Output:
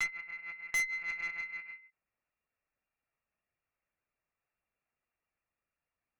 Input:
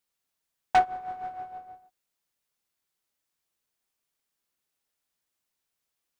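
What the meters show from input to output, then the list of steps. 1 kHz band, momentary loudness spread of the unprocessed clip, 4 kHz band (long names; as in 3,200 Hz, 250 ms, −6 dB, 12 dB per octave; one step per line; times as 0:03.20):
−26.5 dB, 17 LU, −2.5 dB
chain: backwards echo 760 ms −7 dB
voice inversion scrambler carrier 2,800 Hz
one-pitch LPC vocoder at 8 kHz 170 Hz
tube saturation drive 28 dB, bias 0.25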